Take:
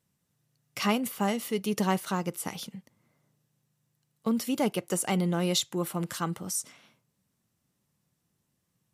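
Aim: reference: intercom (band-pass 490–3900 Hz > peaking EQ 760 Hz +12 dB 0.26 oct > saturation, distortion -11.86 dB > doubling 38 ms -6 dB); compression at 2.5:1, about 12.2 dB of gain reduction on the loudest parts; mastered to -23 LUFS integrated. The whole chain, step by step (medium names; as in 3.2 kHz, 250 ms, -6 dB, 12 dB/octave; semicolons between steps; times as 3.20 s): compression 2.5:1, threshold -42 dBFS; band-pass 490–3900 Hz; peaking EQ 760 Hz +12 dB 0.26 oct; saturation -34.5 dBFS; doubling 38 ms -6 dB; trim +22 dB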